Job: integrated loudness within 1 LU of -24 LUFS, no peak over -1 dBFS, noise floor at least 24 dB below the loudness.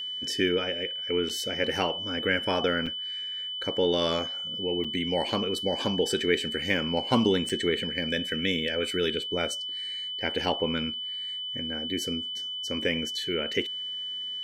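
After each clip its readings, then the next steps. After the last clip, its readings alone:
dropouts 4; longest dropout 5.5 ms; steady tone 3 kHz; tone level -32 dBFS; loudness -28.0 LUFS; peak level -9.0 dBFS; loudness target -24.0 LUFS
-> interpolate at 1.29/2.86/4.84/7.49 s, 5.5 ms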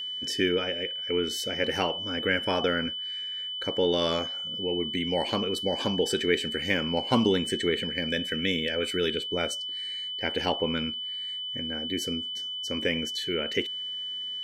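dropouts 0; steady tone 3 kHz; tone level -32 dBFS
-> band-stop 3 kHz, Q 30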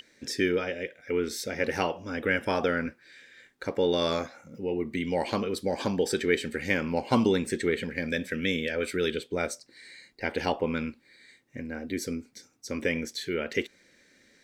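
steady tone not found; loudness -29.5 LUFS; peak level -9.0 dBFS; loudness target -24.0 LUFS
-> trim +5.5 dB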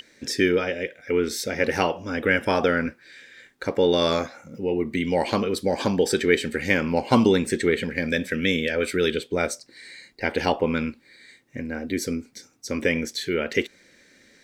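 loudness -24.0 LUFS; peak level -3.5 dBFS; noise floor -57 dBFS

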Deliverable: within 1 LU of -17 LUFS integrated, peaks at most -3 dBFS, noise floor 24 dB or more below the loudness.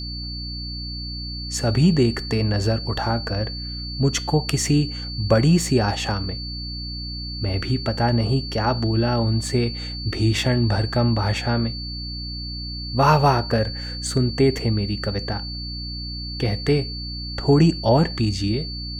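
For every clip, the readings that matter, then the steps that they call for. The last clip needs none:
hum 60 Hz; highest harmonic 300 Hz; hum level -31 dBFS; steady tone 4.5 kHz; tone level -32 dBFS; loudness -22.5 LUFS; peak level -3.5 dBFS; loudness target -17.0 LUFS
-> de-hum 60 Hz, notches 5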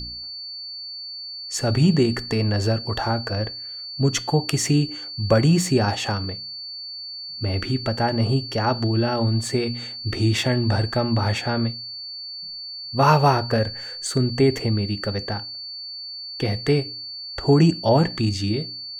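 hum not found; steady tone 4.5 kHz; tone level -32 dBFS
-> band-stop 4.5 kHz, Q 30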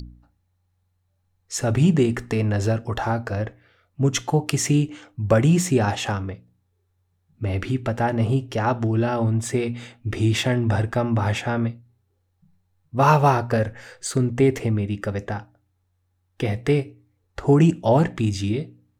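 steady tone not found; loudness -22.5 LUFS; peak level -3.5 dBFS; loudness target -17.0 LUFS
-> trim +5.5 dB; peak limiter -3 dBFS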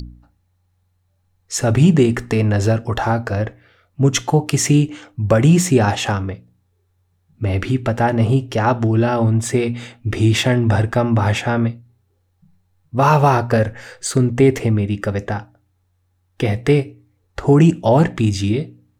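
loudness -17.5 LUFS; peak level -3.0 dBFS; noise floor -64 dBFS

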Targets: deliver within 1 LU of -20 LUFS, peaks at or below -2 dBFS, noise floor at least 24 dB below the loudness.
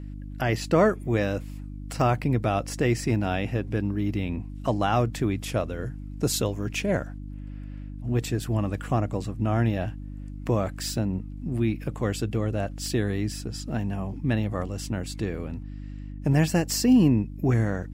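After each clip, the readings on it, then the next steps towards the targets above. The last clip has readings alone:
hum 50 Hz; highest harmonic 300 Hz; hum level -34 dBFS; loudness -26.5 LUFS; peak level -8.5 dBFS; loudness target -20.0 LUFS
-> de-hum 50 Hz, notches 6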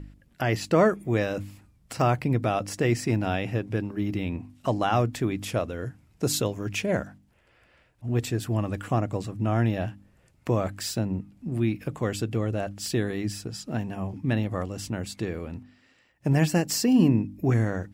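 hum not found; loudness -27.0 LUFS; peak level -8.0 dBFS; loudness target -20.0 LUFS
-> trim +7 dB; peak limiter -2 dBFS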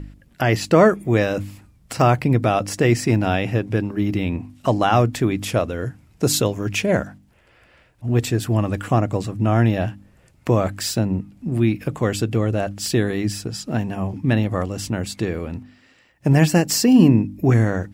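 loudness -20.0 LUFS; peak level -2.0 dBFS; noise floor -55 dBFS

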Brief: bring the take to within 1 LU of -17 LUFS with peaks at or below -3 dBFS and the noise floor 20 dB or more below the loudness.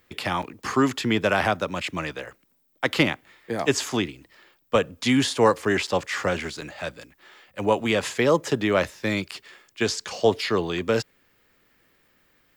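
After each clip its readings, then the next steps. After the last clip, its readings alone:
dropouts 4; longest dropout 6.5 ms; loudness -24.5 LUFS; peak level -7.5 dBFS; loudness target -17.0 LUFS
-> interpolate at 0.42/5.87/6.61/9.31 s, 6.5 ms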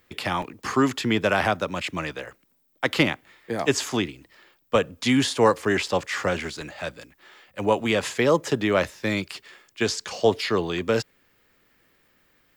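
dropouts 0; loudness -24.5 LUFS; peak level -7.5 dBFS; loudness target -17.0 LUFS
-> trim +7.5 dB; peak limiter -3 dBFS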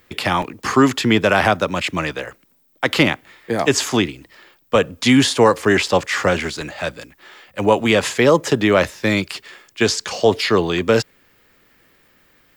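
loudness -17.5 LUFS; peak level -3.0 dBFS; noise floor -59 dBFS

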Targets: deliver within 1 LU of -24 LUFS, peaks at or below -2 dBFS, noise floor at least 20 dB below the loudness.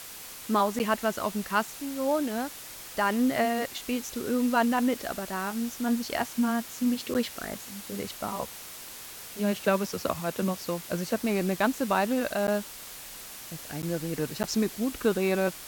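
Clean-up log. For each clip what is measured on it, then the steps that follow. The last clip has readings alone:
dropouts 5; longest dropout 9.6 ms; noise floor -43 dBFS; noise floor target -49 dBFS; loudness -29.0 LUFS; peak level -9.5 dBFS; loudness target -24.0 LUFS
-> interpolate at 0.79/7.14/12.47/13.82/14.43 s, 9.6 ms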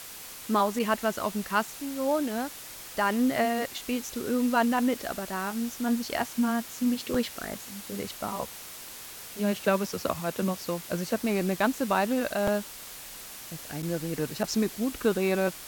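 dropouts 0; noise floor -43 dBFS; noise floor target -49 dBFS
-> noise reduction 6 dB, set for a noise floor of -43 dBFS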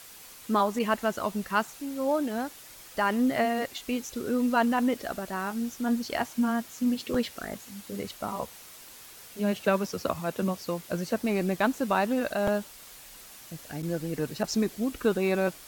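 noise floor -49 dBFS; loudness -29.0 LUFS; peak level -10.0 dBFS; loudness target -24.0 LUFS
-> trim +5 dB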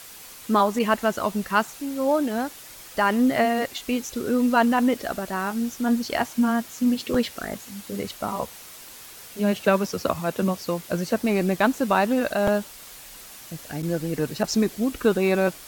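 loudness -24.0 LUFS; peak level -5.0 dBFS; noise floor -44 dBFS

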